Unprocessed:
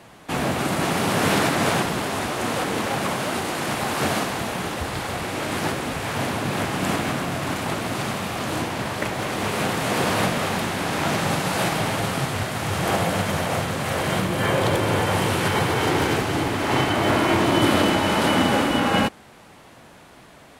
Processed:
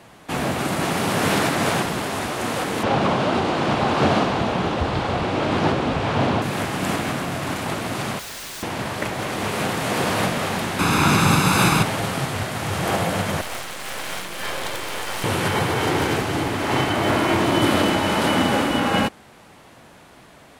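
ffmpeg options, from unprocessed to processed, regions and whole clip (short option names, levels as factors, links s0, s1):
-filter_complex "[0:a]asettb=1/sr,asplit=3[s0][s1][s2];[s0]atrim=end=2.834[s3];[s1]atrim=start=2.83:end=6.42,asetpts=PTS-STARTPTS,afade=t=in:d=0.004:c=qsin,afade=t=out:st=3.586:d=0.004:c=qsin,lowpass=3400,equalizer=f=1900:w=1.5:g=-6.5,acontrast=67[s4];[s2]atrim=start=6.416[s5];[s3][s4]acrossfade=d=0.004:c1=hsin:c2=qsin[s6];[s6][s5]acrossfade=d=0.004:c1=qsin:c2=hsin,asettb=1/sr,asplit=3[s7][s8][s9];[s7]atrim=end=8.194[s10];[s8]atrim=start=8.19:end=8.63,asetpts=PTS-STARTPTS,afade=t=in:d=0.004:c=qsin,afade=t=out:st=0.436:d=0.004:c=qsin,lowpass=f=3900:w=0.5412,lowpass=f=3900:w=1.3066,asubboost=boost=9.5:cutoff=160,aeval=exprs='(mod(29.9*val(0)+1,2)-1)/29.9':c=same[s11];[s9]atrim=start=8.626[s12];[s10][s11]acrossfade=d=0.004:c1=hsin:c2=qsin[s13];[s13][s12]acrossfade=d=0.004:c1=qsin:c2=hsin,asettb=1/sr,asplit=3[s14][s15][s16];[s14]atrim=end=10.794[s17];[s15]atrim=start=10.79:end=11.83,asetpts=PTS-STARTPTS,afade=t=in:d=0.004:c=qsin,afade=t=out:st=1.036:d=0.004:c=qsin,aecho=1:1:0.8:0.6,atrim=end_sample=45864,acontrast=28[s18];[s16]atrim=start=11.826[s19];[s17][s18]acrossfade=d=0.004:c1=hsin:c2=qsin[s20];[s20][s19]acrossfade=d=0.004:c1=qsin:c2=hsin,asettb=1/sr,asplit=3[s21][s22][s23];[s21]atrim=end=13.414[s24];[s22]atrim=start=13.41:end=15.24,asetpts=PTS-STARTPTS,afade=t=in:d=0.004:c=qsin,afade=t=out:st=1.826:d=0.004:c=qsin,highpass=f=480:p=1,tiltshelf=f=1200:g=-3.5,aeval=exprs='max(val(0),0)':c=same[s25];[s23]atrim=start=15.236[s26];[s24][s25]acrossfade=d=0.004:c1=hsin:c2=qsin[s27];[s27][s26]acrossfade=d=0.004:c1=qsin:c2=hsin"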